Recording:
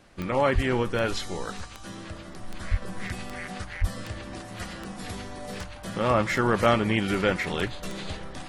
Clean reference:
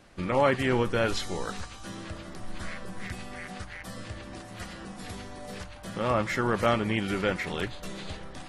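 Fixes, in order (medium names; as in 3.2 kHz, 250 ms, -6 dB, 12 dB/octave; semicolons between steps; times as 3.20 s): de-click; 0.54–0.66 s: high-pass 140 Hz 24 dB/octave; 2.70–2.82 s: high-pass 140 Hz 24 dB/octave; 2.82 s: gain correction -3.5 dB; 3.80–3.92 s: high-pass 140 Hz 24 dB/octave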